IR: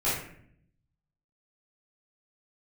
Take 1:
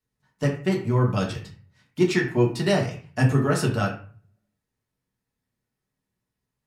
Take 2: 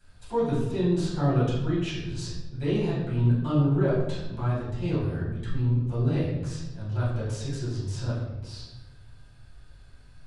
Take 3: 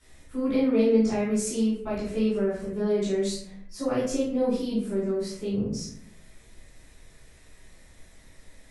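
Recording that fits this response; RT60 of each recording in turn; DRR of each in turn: 3; 0.40 s, 1.0 s, 0.60 s; -1.5 dB, -12.0 dB, -12.0 dB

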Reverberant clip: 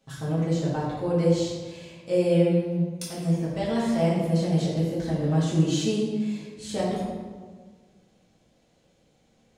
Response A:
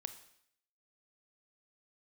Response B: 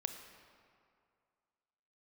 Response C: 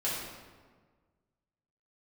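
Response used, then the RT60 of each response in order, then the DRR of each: C; 0.65 s, 2.3 s, 1.5 s; 9.5 dB, 6.5 dB, -8.5 dB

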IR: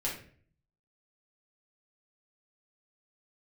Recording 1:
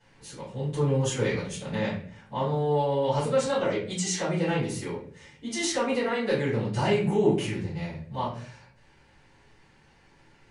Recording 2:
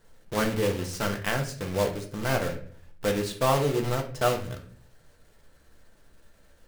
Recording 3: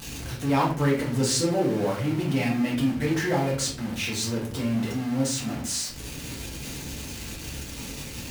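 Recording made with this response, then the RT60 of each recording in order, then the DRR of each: 3; 0.50 s, 0.50 s, 0.50 s; -14.0 dB, 2.5 dB, -5.5 dB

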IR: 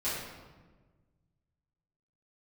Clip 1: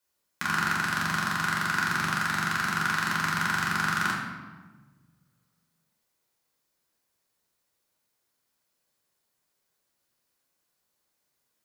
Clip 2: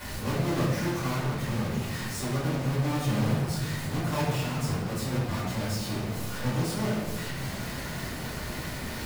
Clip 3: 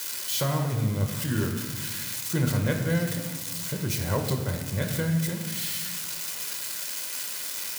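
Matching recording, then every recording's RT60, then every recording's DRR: 2; 1.4 s, 1.4 s, 1.4 s; -4.5 dB, -11.0 dB, 3.5 dB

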